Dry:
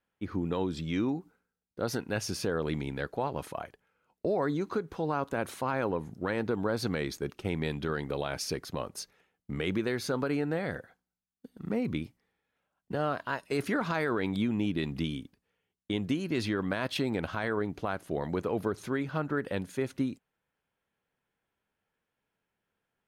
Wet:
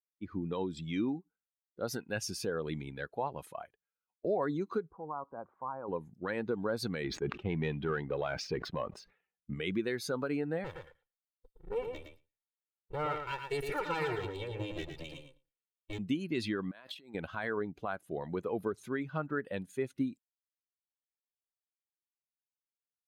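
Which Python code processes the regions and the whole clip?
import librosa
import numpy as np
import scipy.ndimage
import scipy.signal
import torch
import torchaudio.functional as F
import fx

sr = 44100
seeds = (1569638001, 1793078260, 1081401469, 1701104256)

y = fx.chain(x, sr, fx.law_mismatch(coded='mu'),
    fx.ladder_lowpass(hz=1300.0, resonance_pct=40), at=(4.89, 5.88))
y = fx.chain(y, sr, fx.lowpass(hz=2800.0, slope=12),
    fx.leveller(passes=1),
    fx.sustainer(db_per_s=82.0), at=(7.04, 9.54))
y = fx.chain(y, sr, fx.lower_of_two(delay_ms=2.2),
    fx.echo_feedback(ms=112, feedback_pct=15, wet_db=-4), at=(10.64, 15.99))
y = fx.chain(y, sr, fx.highpass(hz=290.0, slope=6),
    fx.over_compress(threshold_db=-44.0, ratio=-1.0), at=(16.71, 17.15))
y = fx.bin_expand(y, sr, power=1.5)
y = fx.peak_eq(y, sr, hz=75.0, db=-4.5, octaves=1.9)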